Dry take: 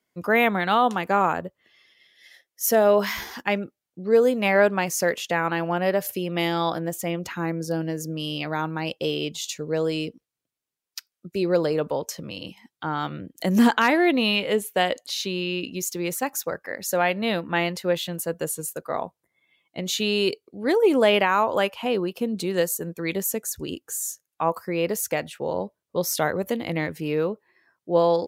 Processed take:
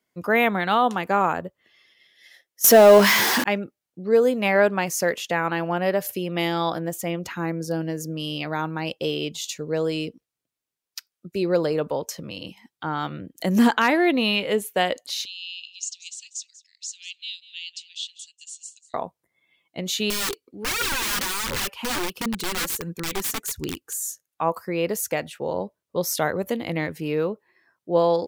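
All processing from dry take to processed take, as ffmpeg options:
ffmpeg -i in.wav -filter_complex "[0:a]asettb=1/sr,asplit=3[link_01][link_02][link_03];[link_01]atrim=end=2.644[link_04];[link_02]atrim=start=2.64:end=3.44,asetpts=PTS-STARTPTS,afade=type=in:duration=0.004:curve=qsin,afade=type=out:start_time=0.796:duration=0.004:curve=qsin,aeval=exprs='val(0)+0.5*0.0631*sgn(val(0))':channel_layout=same,highpass=frequency=130:width=0.5412,highpass=frequency=130:width=1.3066,acontrast=65[link_05];[link_03]atrim=start=3.436[link_06];[link_04][link_05]acrossfade=duration=0.004:curve1=hsin:curve2=qsin[link_07];[link_07][link_06]acrossfade=duration=0.004:curve1=qsin:curve2=hsin,asettb=1/sr,asplit=3[link_08][link_09][link_10];[link_08]atrim=end=15.254[link_11];[link_09]atrim=start=15.25:end=18.94,asetpts=PTS-STARTPTS,afade=type=in:duration=0.004:curve=qsin,afade=type=out:start_time=3.686:duration=0.004:curve=qsin,asuperpass=centerf=4900:order=12:qfactor=0.93,aecho=1:1:192:0.15,atrim=end_sample=162729[link_12];[link_10]atrim=start=18.936[link_13];[link_11][link_12]acrossfade=duration=0.004:curve1=hsin:curve2=qsin[link_14];[link_14][link_13]acrossfade=duration=0.004:curve1=qsin:curve2=hsin,asettb=1/sr,asplit=3[link_15][link_16][link_17];[link_15]atrim=end=20.104[link_18];[link_16]atrim=start=20.1:end=23.94,asetpts=PTS-STARTPTS,afade=type=in:duration=0.004:curve=qsin,afade=type=out:start_time=3.836:duration=0.004:curve=qsin,aeval=exprs='(mod(11.9*val(0)+1,2)-1)/11.9':channel_layout=same,equalizer=frequency=640:width=2.6:gain=-9,aphaser=in_gain=1:out_gain=1:delay=4.3:decay=0.44:speed=1.4:type=triangular[link_19];[link_17]atrim=start=23.936[link_20];[link_18][link_19]acrossfade=duration=0.004:curve1=hsin:curve2=qsin[link_21];[link_21][link_20]acrossfade=duration=0.004:curve1=qsin:curve2=hsin" out.wav

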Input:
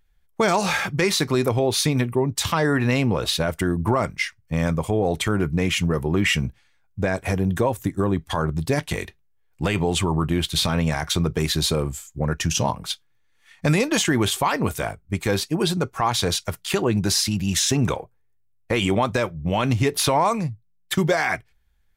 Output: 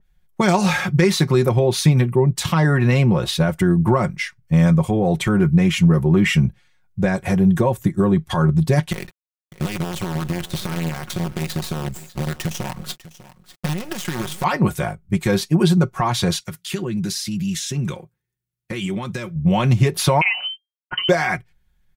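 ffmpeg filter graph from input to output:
ffmpeg -i in.wav -filter_complex "[0:a]asettb=1/sr,asplit=3[link_01][link_02][link_03];[link_01]atrim=end=8.924[link_04];[link_02]atrim=start=8.92:end=14.44,asetpts=PTS-STARTPTS,afade=type=in:duration=0.004:curve=qsin,afade=type=out:start_time=5.516:duration=0.004:curve=qsin,acompressor=threshold=-25dB:ratio=20:attack=3.2:release=140:knee=1:detection=peak,acrusher=bits=5:dc=4:mix=0:aa=0.000001,aecho=1:1:598:0.133,atrim=end_sample=243432[link_05];[link_03]atrim=start=14.436[link_06];[link_04][link_05]acrossfade=duration=0.004:curve1=hsin:curve2=qsin[link_07];[link_07][link_06]acrossfade=duration=0.004:curve1=qsin:curve2=hsin,asettb=1/sr,asplit=3[link_08][link_09][link_10];[link_08]atrim=end=16.404[link_11];[link_09]atrim=start=16.4:end=19.36,asetpts=PTS-STARTPTS,afade=type=in:duration=0.004:curve=qsin,afade=type=out:start_time=2.956:duration=0.004:curve=qsin,highpass=frequency=150:poles=1,equalizer=frequency=740:width=0.97:gain=-11,acompressor=threshold=-29dB:ratio=2:attack=3.2:release=140:knee=1:detection=peak[link_12];[link_10]atrim=start=19.356[link_13];[link_11][link_12]acrossfade=duration=0.004:curve1=hsin:curve2=qsin[link_14];[link_14][link_13]acrossfade=duration=0.004:curve1=qsin:curve2=hsin,asettb=1/sr,asplit=3[link_15][link_16][link_17];[link_15]atrim=end=20.214[link_18];[link_16]atrim=start=20.21:end=21.09,asetpts=PTS-STARTPTS,afade=type=in:duration=0.004:curve=qsin,afade=type=out:start_time=0.876:duration=0.004:curve=qsin,aeval=exprs='sgn(val(0))*max(abs(val(0))-0.00266,0)':channel_layout=same,lowpass=frequency=2700:width_type=q:width=0.5098,lowpass=frequency=2700:width_type=q:width=0.6013,lowpass=frequency=2700:width_type=q:width=0.9,lowpass=frequency=2700:width_type=q:width=2.563,afreqshift=-3200[link_19];[link_17]atrim=start=21.086[link_20];[link_18][link_19]acrossfade=duration=0.004:curve1=hsin:curve2=qsin[link_21];[link_21][link_20]acrossfade=duration=0.004:curve1=qsin:curve2=hsin,equalizer=frequency=130:width=0.85:gain=8,aecho=1:1:5.5:0.6,adynamicequalizer=threshold=0.0141:dfrequency=2700:dqfactor=0.7:tfrequency=2700:tqfactor=0.7:attack=5:release=100:ratio=0.375:range=1.5:mode=cutabove:tftype=highshelf" out.wav

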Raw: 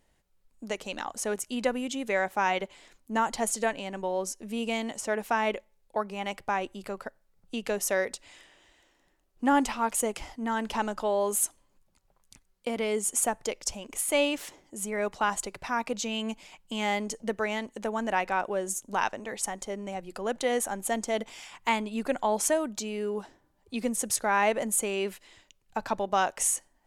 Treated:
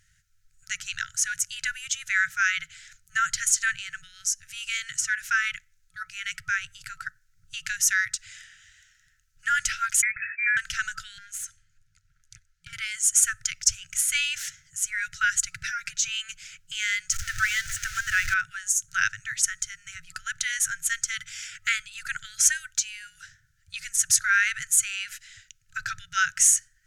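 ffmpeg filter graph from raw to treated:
ffmpeg -i in.wav -filter_complex "[0:a]asettb=1/sr,asplit=3[link_01][link_02][link_03];[link_01]atrim=end=10.024[link_04];[link_02]atrim=start=10.02:end=10.57,asetpts=PTS-STARTPTS,afade=type=in:duration=0.004:curve=qsin,afade=type=out:start_time=0.546:duration=0.004:curve=qsin,equalizer=frequency=740:width=1.2:gain=5,acompressor=threshold=-27dB:ratio=16:attack=3.2:release=140:knee=1:detection=peak,lowpass=frequency=2200:width_type=q:width=0.5098,lowpass=frequency=2200:width_type=q:width=0.6013,lowpass=frequency=2200:width_type=q:width=0.9,lowpass=frequency=2200:width_type=q:width=2.563,afreqshift=-2600[link_05];[link_03]atrim=start=10.566[link_06];[link_04][link_05]acrossfade=duration=0.004:curve1=hsin:curve2=qsin[link_07];[link_07][link_06]acrossfade=duration=0.004:curve1=qsin:curve2=hsin,asettb=1/sr,asplit=3[link_08][link_09][link_10];[link_08]atrim=end=11.184[link_11];[link_09]atrim=start=11.18:end=12.73,asetpts=PTS-STARTPTS,afade=type=in:duration=0.004:curve=qsin,afade=type=out:start_time=1.546:duration=0.004:curve=qsin,highshelf=frequency=6200:gain=-10,acompressor=threshold=-36dB:ratio=12:attack=3.2:release=140:knee=1:detection=peak,aeval=exprs='clip(val(0),-1,0.0106)':channel_layout=same[link_12];[link_10]atrim=start=12.726[link_13];[link_11][link_12]acrossfade=duration=0.004:curve1=hsin:curve2=qsin[link_14];[link_14][link_13]acrossfade=duration=0.004:curve1=qsin:curve2=hsin,asettb=1/sr,asplit=3[link_15][link_16][link_17];[link_15]atrim=end=15.644[link_18];[link_16]atrim=start=15.64:end=16.08,asetpts=PTS-STARTPTS,afade=type=in:duration=0.004:curve=qsin,afade=type=out:start_time=0.436:duration=0.004:curve=qsin,aecho=1:1:5.7:0.98,atrim=end_sample=19404,acompressor=threshold=-30dB:ratio=10:attack=3.2:release=140:knee=1:detection=peak[link_19];[link_17]atrim=start=16.076[link_20];[link_18][link_19]acrossfade=duration=0.004:curve1=hsin:curve2=qsin[link_21];[link_21][link_20]acrossfade=duration=0.004:curve1=qsin:curve2=hsin,asettb=1/sr,asplit=3[link_22][link_23][link_24];[link_22]atrim=end=17.124[link_25];[link_23]atrim=start=17.12:end=18.34,asetpts=PTS-STARTPTS,afade=type=in:duration=0.004:curve=qsin,afade=type=out:start_time=1.216:duration=0.004:curve=qsin,aeval=exprs='val(0)+0.5*0.0237*sgn(val(0))':channel_layout=same,lowshelf=frequency=100:width_type=q:width=1.5:gain=8[link_26];[link_24]atrim=start=18.336[link_27];[link_25][link_26]acrossfade=duration=0.004:curve1=hsin:curve2=qsin[link_28];[link_28][link_27]acrossfade=duration=0.004:curve1=qsin:curve2=hsin,afftfilt=real='re*(1-between(b*sr/4096,170,1300))':imag='im*(1-between(b*sr/4096,170,1300))':win_size=4096:overlap=0.75,equalizer=frequency=100:width_type=o:width=0.67:gain=8,equalizer=frequency=1600:width_type=o:width=0.67:gain=8,equalizer=frequency=6300:width_type=o:width=0.67:gain=11,acontrast=20,volume=-2dB" out.wav

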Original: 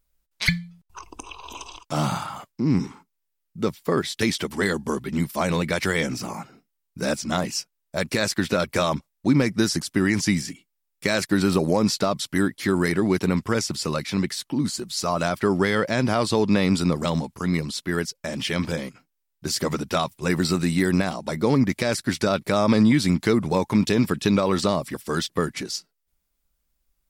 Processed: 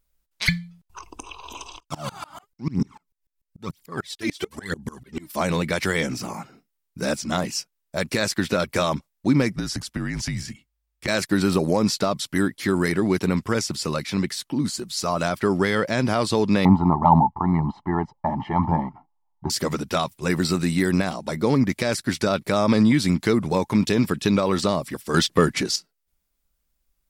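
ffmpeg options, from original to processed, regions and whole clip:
ffmpeg -i in.wav -filter_complex "[0:a]asettb=1/sr,asplit=3[link_01][link_02][link_03];[link_01]atrim=end=1.804[link_04];[link_02]atrim=start=1.8:end=5.32,asetpts=PTS-STARTPTS,afade=type=in:duration=0.004:curve=qsin,afade=type=out:start_time=3.516:duration=0.004:curve=qsin,aphaser=in_gain=1:out_gain=1:delay=3.5:decay=0.69:speed=1:type=triangular,aeval=exprs='val(0)*pow(10,-27*if(lt(mod(-6.8*n/s,1),2*abs(-6.8)/1000),1-mod(-6.8*n/s,1)/(2*abs(-6.8)/1000),(mod(-6.8*n/s,1)-2*abs(-6.8)/1000)/(1-2*abs(-6.8)/1000))/20)':channel_layout=same[link_05];[link_03]atrim=start=5.316[link_06];[link_04][link_05]acrossfade=duration=0.004:curve1=hsin:curve2=qsin[link_07];[link_07][link_06]acrossfade=duration=0.004:curve1=qsin:curve2=hsin,asettb=1/sr,asplit=3[link_08][link_09][link_10];[link_08]atrim=end=9.564[link_11];[link_09]atrim=start=9.56:end=11.08,asetpts=PTS-STARTPTS,afade=type=in:duration=0.004:curve=qsin,afade=type=out:start_time=1.516:duration=0.004:curve=qsin,highshelf=frequency=5600:gain=-6,acompressor=threshold=-23dB:ratio=5:attack=3.2:release=140:knee=1:detection=peak,afreqshift=-52[link_12];[link_10]atrim=start=11.076[link_13];[link_11][link_12]acrossfade=duration=0.004:curve1=hsin:curve2=qsin[link_14];[link_14][link_13]acrossfade=duration=0.004:curve1=qsin:curve2=hsin,asettb=1/sr,asplit=3[link_15][link_16][link_17];[link_15]atrim=end=16.654[link_18];[link_16]atrim=start=16.65:end=19.5,asetpts=PTS-STARTPTS,afade=type=in:duration=0.004:curve=qsin,afade=type=out:start_time=2.846:duration=0.004:curve=qsin,aecho=1:1:1:0.84,atrim=end_sample=125685,aphaser=in_gain=1:out_gain=1:delay=2.9:decay=0.28:speed=1.9:type=sinusoidal,lowpass=frequency=870:width_type=q:width=9[link_19];[link_17]atrim=start=19.496[link_20];[link_18][link_19]acrossfade=duration=0.004:curve1=hsin:curve2=qsin[link_21];[link_21][link_20]acrossfade=duration=0.004:curve1=qsin:curve2=hsin,asettb=1/sr,asplit=3[link_22][link_23][link_24];[link_22]atrim=end=25.144[link_25];[link_23]atrim=start=25.14:end=25.76,asetpts=PTS-STARTPTS,afade=type=in:duration=0.004:curve=qsin,afade=type=out:start_time=0.616:duration=0.004:curve=qsin,highshelf=frequency=11000:gain=-6,acontrast=81[link_26];[link_24]atrim=start=25.756[link_27];[link_25][link_26]acrossfade=duration=0.004:curve1=hsin:curve2=qsin[link_28];[link_28][link_27]acrossfade=duration=0.004:curve1=qsin:curve2=hsin" out.wav

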